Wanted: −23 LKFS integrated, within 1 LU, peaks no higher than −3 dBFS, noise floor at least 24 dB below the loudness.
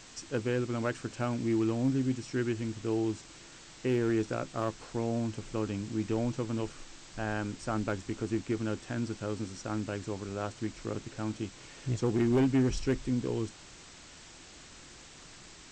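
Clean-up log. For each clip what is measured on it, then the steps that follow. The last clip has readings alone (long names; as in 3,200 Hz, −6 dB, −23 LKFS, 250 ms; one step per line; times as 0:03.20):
share of clipped samples 0.4%; peaks flattened at −21.0 dBFS; background noise floor −52 dBFS; target noise floor −57 dBFS; integrated loudness −33.0 LKFS; sample peak −21.0 dBFS; target loudness −23.0 LKFS
→ clipped peaks rebuilt −21 dBFS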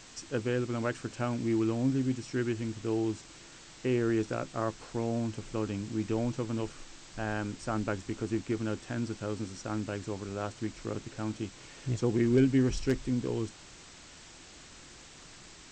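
share of clipped samples 0.0%; background noise floor −52 dBFS; target noise floor −57 dBFS
→ broadband denoise 6 dB, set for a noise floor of −52 dBFS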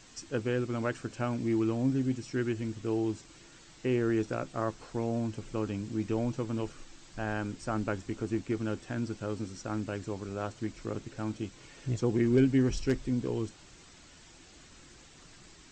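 background noise floor −55 dBFS; target noise floor −57 dBFS
→ broadband denoise 6 dB, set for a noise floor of −55 dBFS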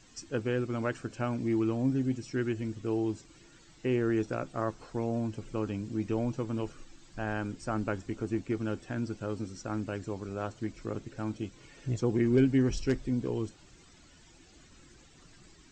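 background noise floor −58 dBFS; integrated loudness −33.0 LKFS; sample peak −14.0 dBFS; target loudness −23.0 LKFS
→ level +10 dB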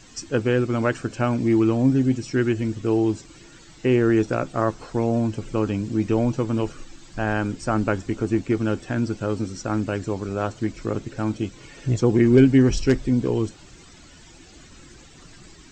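integrated loudness −23.0 LKFS; sample peak −4.0 dBFS; background noise floor −48 dBFS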